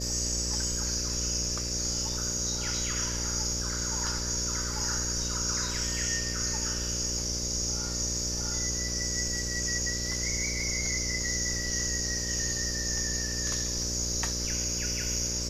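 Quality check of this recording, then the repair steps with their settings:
mains buzz 60 Hz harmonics 10 −36 dBFS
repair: hum removal 60 Hz, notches 10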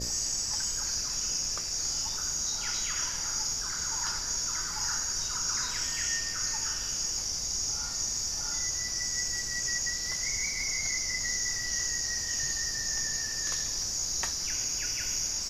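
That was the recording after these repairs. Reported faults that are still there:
none of them is left

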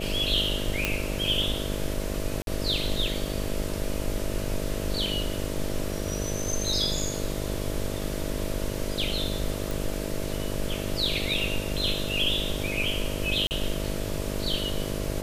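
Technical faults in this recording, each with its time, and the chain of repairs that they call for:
mains buzz 50 Hz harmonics 13 −33 dBFS
0:00.85: click −8 dBFS
0:02.42–0:02.47: drop-out 52 ms
0:09.71: click
0:13.47–0:13.51: drop-out 39 ms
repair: click removal
hum removal 50 Hz, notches 13
repair the gap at 0:02.42, 52 ms
repair the gap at 0:13.47, 39 ms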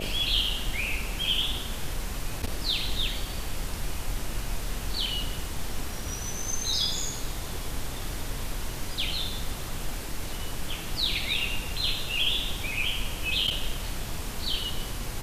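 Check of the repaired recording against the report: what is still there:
none of them is left

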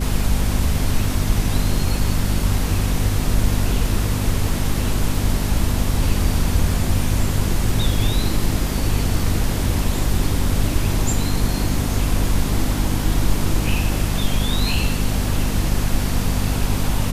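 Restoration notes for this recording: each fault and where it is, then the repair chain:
mains hum 50 Hz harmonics 5 −23 dBFS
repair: hum removal 50 Hz, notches 5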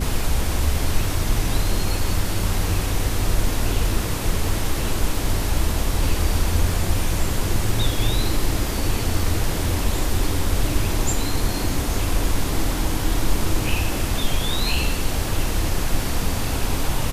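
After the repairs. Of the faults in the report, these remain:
none of them is left

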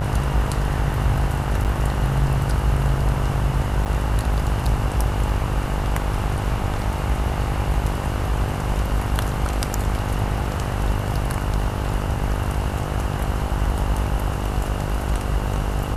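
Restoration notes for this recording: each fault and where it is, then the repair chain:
mains buzz 50 Hz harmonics 31 −26 dBFS
0:01.64–0:01.65: drop-out 8.6 ms
0:03.85–0:03.86: drop-out 8.3 ms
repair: hum removal 50 Hz, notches 31
repair the gap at 0:01.64, 8.6 ms
repair the gap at 0:03.85, 8.3 ms

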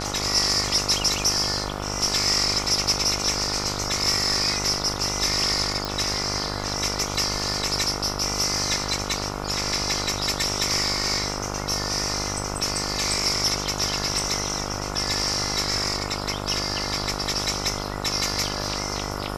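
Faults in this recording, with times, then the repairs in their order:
mains buzz 50 Hz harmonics 29 −31 dBFS
0:05.85: click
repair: click removal
hum removal 50 Hz, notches 29

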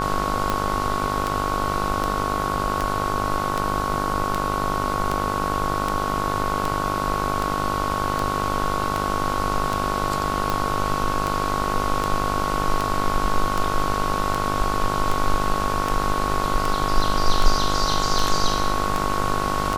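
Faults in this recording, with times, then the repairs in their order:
mains buzz 50 Hz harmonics 30 −27 dBFS
scratch tick 78 rpm
whistle 1,100 Hz −26 dBFS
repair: click removal
hum removal 50 Hz, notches 30
notch filter 1,100 Hz, Q 30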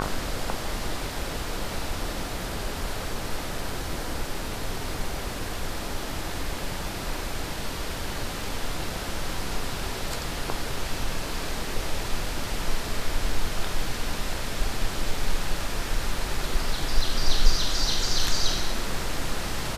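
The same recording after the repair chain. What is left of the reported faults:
none of them is left

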